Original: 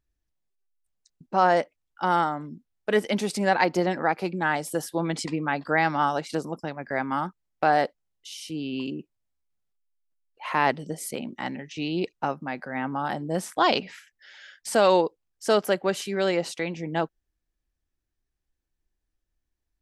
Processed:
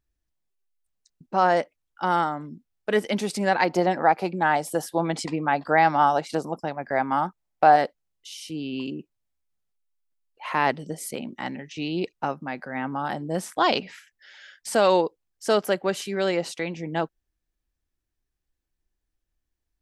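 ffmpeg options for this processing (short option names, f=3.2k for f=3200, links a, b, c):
-filter_complex "[0:a]asettb=1/sr,asplit=3[a][b][c];[a]atrim=end=3.694[d];[b]atrim=start=3.69:end=7.76,asetpts=PTS-STARTPTS,afade=t=in:d=0.004:c=qsin,afade=t=out:st=4.066:d=0.004:c=qsin,equalizer=f=750:t=o:w=0.87:g=7[e];[c]atrim=start=7.756[f];[d][e]acrossfade=d=0.004:c1=hsin:c2=qsin[g];[g][f]acrossfade=d=0.004:c1=qsin:c2=hsin"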